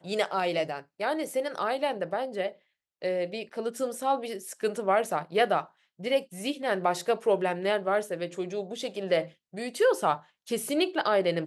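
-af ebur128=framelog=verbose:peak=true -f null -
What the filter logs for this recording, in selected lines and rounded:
Integrated loudness:
  I:         -29.1 LUFS
  Threshold: -39.3 LUFS
Loudness range:
  LRA:         3.5 LU
  Threshold: -49.5 LUFS
  LRA low:   -31.6 LUFS
  LRA high:  -28.1 LUFS
True peak:
  Peak:      -11.8 dBFS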